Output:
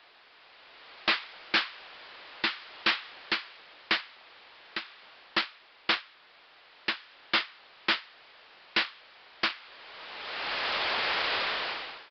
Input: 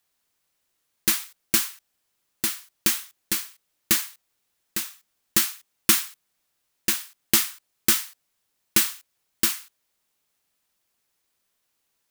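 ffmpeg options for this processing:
ffmpeg -i in.wav -filter_complex "[0:a]aeval=exprs='val(0)+0.5*0.1*sgn(val(0))':channel_layout=same,dynaudnorm=framelen=300:gausssize=5:maxgain=11dB,aeval=exprs='0.944*(cos(1*acos(clip(val(0)/0.944,-1,1)))-cos(1*PI/2))+0.133*(cos(7*acos(clip(val(0)/0.944,-1,1)))-cos(7*PI/2))':channel_layout=same,aresample=11025,asoftclip=type=hard:threshold=-23dB,aresample=44100,acrossover=split=400 4100:gain=0.141 1 0.141[link_01][link_02][link_03];[link_01][link_02][link_03]amix=inputs=3:normalize=0,volume=6dB" out.wav

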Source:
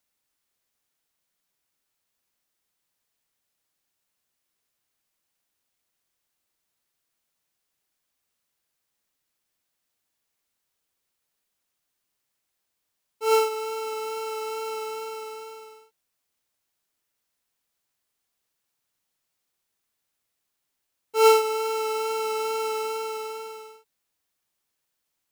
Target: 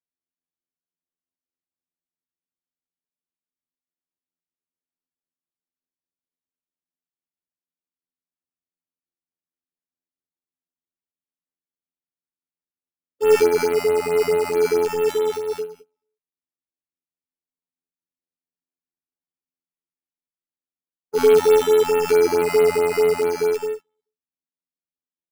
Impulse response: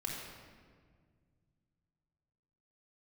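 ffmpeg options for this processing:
-filter_complex "[0:a]asplit=2[link_01][link_02];[link_02]acompressor=threshold=-33dB:ratio=6,volume=2dB[link_03];[link_01][link_03]amix=inputs=2:normalize=0,aecho=1:1:243:0.501,acrossover=split=480|3000[link_04][link_05][link_06];[link_04]acompressor=threshold=-36dB:ratio=6[link_07];[link_07][link_05][link_06]amix=inputs=3:normalize=0,agate=range=-39dB:threshold=-32dB:ratio=16:detection=peak[link_08];[1:a]atrim=start_sample=2205,atrim=end_sample=3969[link_09];[link_08][link_09]afir=irnorm=-1:irlink=0,acrusher=samples=10:mix=1:aa=0.000001:lfo=1:lforange=6:lforate=0.23,equalizer=frequency=250:width_type=o:width=1.9:gain=15,asoftclip=type=tanh:threshold=-5dB,afftfilt=real='hypot(re,im)*cos(PI*b)':imag='0':win_size=2048:overlap=0.75,alimiter=level_in=3.5dB:limit=-1dB:release=50:level=0:latency=1,afftfilt=real='re*(1-between(b*sr/1024,370*pow(6500/370,0.5+0.5*sin(2*PI*4.6*pts/sr))/1.41,370*pow(6500/370,0.5+0.5*sin(2*PI*4.6*pts/sr))*1.41))':imag='im*(1-between(b*sr/1024,370*pow(6500/370,0.5+0.5*sin(2*PI*4.6*pts/sr))/1.41,370*pow(6500/370,0.5+0.5*sin(2*PI*4.6*pts/sr))*1.41))':win_size=1024:overlap=0.75"

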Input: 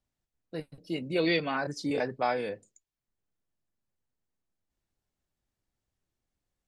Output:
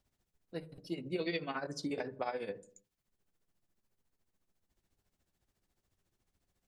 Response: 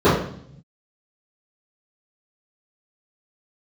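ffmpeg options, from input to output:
-filter_complex "[0:a]acompressor=threshold=-52dB:ratio=2,tremolo=f=14:d=0.74,asplit=2[link_01][link_02];[1:a]atrim=start_sample=2205,afade=type=out:start_time=0.37:duration=0.01,atrim=end_sample=16758[link_03];[link_02][link_03]afir=irnorm=-1:irlink=0,volume=-41dB[link_04];[link_01][link_04]amix=inputs=2:normalize=0,volume=8dB"

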